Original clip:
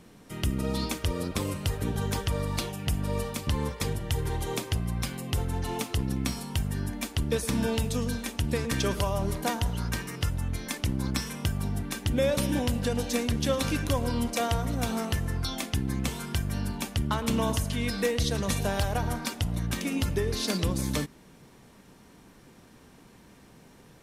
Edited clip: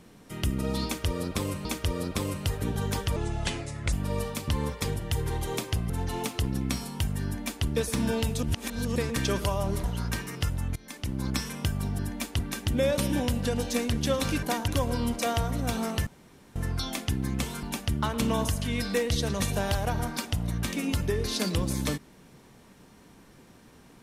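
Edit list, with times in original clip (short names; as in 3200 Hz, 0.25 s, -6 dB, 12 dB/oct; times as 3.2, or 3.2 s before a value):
0.85–1.65 loop, 2 plays
2.36–2.92 speed 73%
4.89–5.45 cut
6.8–7.21 copy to 11.79
7.98–8.51 reverse
9.39–9.64 move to 13.82
10.56–11.1 fade in, from -18.5 dB
15.21 insert room tone 0.49 s
16.28–16.71 cut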